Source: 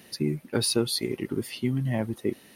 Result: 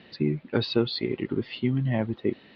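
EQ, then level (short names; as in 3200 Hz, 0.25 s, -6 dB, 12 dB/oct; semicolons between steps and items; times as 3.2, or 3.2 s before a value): steep low-pass 4200 Hz 48 dB/oct; +1.5 dB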